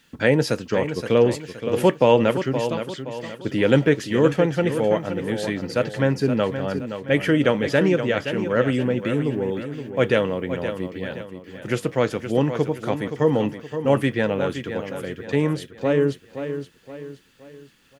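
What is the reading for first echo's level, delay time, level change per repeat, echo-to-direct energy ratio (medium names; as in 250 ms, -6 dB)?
-9.5 dB, 521 ms, -7.5 dB, -8.5 dB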